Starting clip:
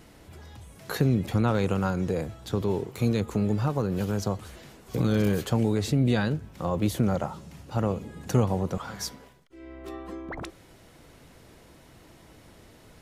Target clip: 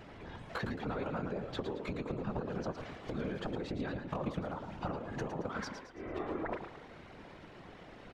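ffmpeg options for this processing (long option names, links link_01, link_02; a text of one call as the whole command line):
ffmpeg -i in.wav -filter_complex "[0:a]equalizer=frequency=94:width_type=o:width=0.28:gain=-12.5,acompressor=threshold=-35dB:ratio=12,lowpass=2700,atempo=1.6,lowshelf=frequency=390:gain=-5.5,asoftclip=type=hard:threshold=-30.5dB,asplit=6[link_01][link_02][link_03][link_04][link_05][link_06];[link_02]adelay=111,afreqshift=40,volume=-8dB[link_07];[link_03]adelay=222,afreqshift=80,volume=-15.5dB[link_08];[link_04]adelay=333,afreqshift=120,volume=-23.1dB[link_09];[link_05]adelay=444,afreqshift=160,volume=-30.6dB[link_10];[link_06]adelay=555,afreqshift=200,volume=-38.1dB[link_11];[link_01][link_07][link_08][link_09][link_10][link_11]amix=inputs=6:normalize=0,afftfilt=real='hypot(re,im)*cos(2*PI*random(0))':imag='hypot(re,im)*sin(2*PI*random(1))':win_size=512:overlap=0.75,volume=10.5dB" out.wav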